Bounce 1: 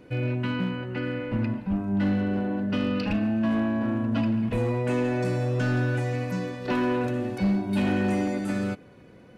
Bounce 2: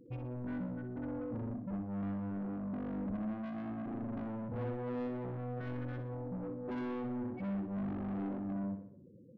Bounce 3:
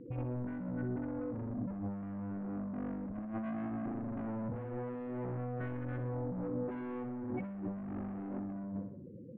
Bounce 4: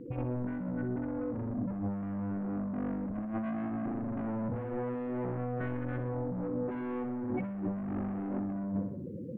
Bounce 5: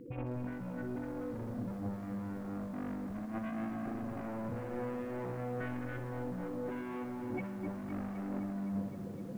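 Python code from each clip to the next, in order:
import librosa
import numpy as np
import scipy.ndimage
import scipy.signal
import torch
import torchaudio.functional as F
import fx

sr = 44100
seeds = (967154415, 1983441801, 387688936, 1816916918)

y1 = fx.spec_topn(x, sr, count=8)
y1 = 10.0 ** (-33.0 / 20.0) * np.tanh(y1 / 10.0 ** (-33.0 / 20.0))
y1 = fx.echo_feedback(y1, sr, ms=61, feedback_pct=49, wet_db=-8.5)
y1 = y1 * 10.0 ** (-4.5 / 20.0)
y2 = fx.over_compress(y1, sr, threshold_db=-43.0, ratio=-1.0)
y2 = scipy.signal.sosfilt(scipy.signal.butter(4, 2500.0, 'lowpass', fs=sr, output='sos'), y2)
y2 = y2 * 10.0 ** (4.0 / 20.0)
y3 = fx.hum_notches(y2, sr, base_hz=60, count=2)
y3 = fx.rider(y3, sr, range_db=5, speed_s=0.5)
y3 = y3 * 10.0 ** (4.5 / 20.0)
y4 = fx.high_shelf(y3, sr, hz=2100.0, db=11.5)
y4 = fx.echo_crushed(y4, sr, ms=257, feedback_pct=80, bits=9, wet_db=-10.0)
y4 = y4 * 10.0 ** (-5.0 / 20.0)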